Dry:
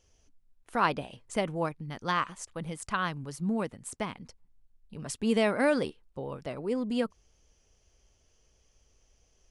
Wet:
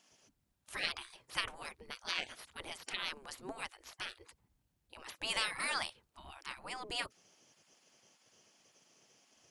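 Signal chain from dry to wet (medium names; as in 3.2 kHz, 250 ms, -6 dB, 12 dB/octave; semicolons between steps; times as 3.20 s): spectral gate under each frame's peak -20 dB weak; trim +6 dB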